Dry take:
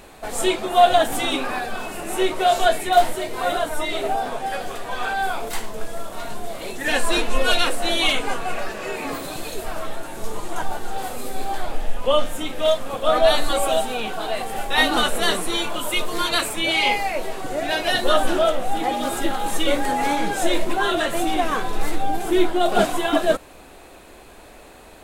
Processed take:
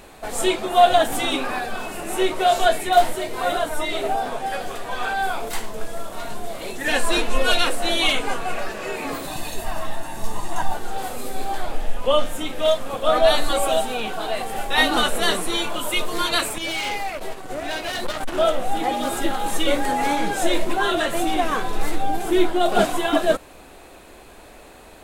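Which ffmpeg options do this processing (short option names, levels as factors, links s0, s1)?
-filter_complex "[0:a]asettb=1/sr,asplit=3[s0][s1][s2];[s0]atrim=end=9.274[s3];[s1]atrim=start=9.27:end=10.74,asetpts=PTS-STARTPTS,afade=t=in:d=0.004:c=qsin,afade=t=out:st=1.466:d=0.004:c=qsin,aecho=1:1:1.1:0.54,atrim=end_sample=64827[s4];[s2]atrim=start=10.736[s5];[s3][s4]acrossfade=d=0.004:c1=hsin:c2=qsin[s6];[s6][s5]acrossfade=d=0.004:c1=qsin:c2=hsin,asettb=1/sr,asplit=3[s7][s8][s9];[s7]atrim=end=16.584[s10];[s8]atrim=start=16.58:end=18.38,asetpts=PTS-STARTPTS,afade=t=in:d=0.004:c=qsin,afade=t=out:st=1.796:d=0.004:c=qsin,aeval=exprs='(tanh(14.1*val(0)+0.55)-tanh(0.55))/14.1':c=same[s11];[s9]atrim=start=18.376[s12];[s10][s11]acrossfade=d=0.004:c1=hsin:c2=qsin[s13];[s13][s12]acrossfade=d=0.004:c1=qsin:c2=hsin"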